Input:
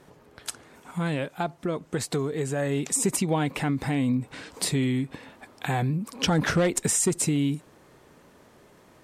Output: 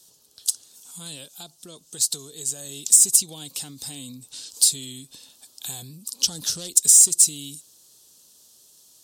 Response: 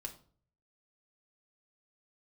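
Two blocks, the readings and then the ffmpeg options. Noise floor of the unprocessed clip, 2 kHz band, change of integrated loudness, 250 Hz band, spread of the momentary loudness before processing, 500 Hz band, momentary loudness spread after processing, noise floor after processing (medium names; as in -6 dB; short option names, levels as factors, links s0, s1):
-56 dBFS, under -15 dB, +9.0 dB, -16.5 dB, 13 LU, -17.5 dB, 23 LU, -57 dBFS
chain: -filter_complex "[0:a]acrossover=split=460|3000[s0][s1][s2];[s1]acompressor=threshold=0.0355:ratio=6[s3];[s0][s3][s2]amix=inputs=3:normalize=0,aexciter=amount=14.5:drive=9.2:freq=3400,volume=0.15"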